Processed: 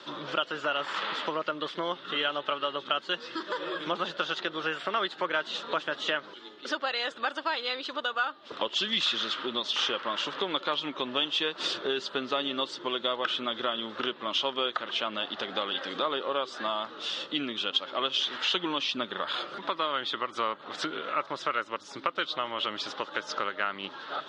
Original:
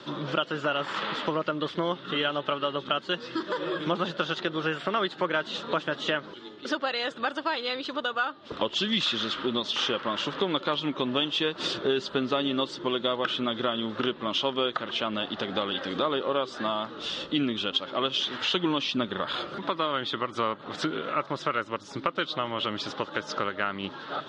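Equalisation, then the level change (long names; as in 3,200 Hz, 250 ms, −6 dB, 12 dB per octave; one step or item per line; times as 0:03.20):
high-pass filter 610 Hz 6 dB per octave
0.0 dB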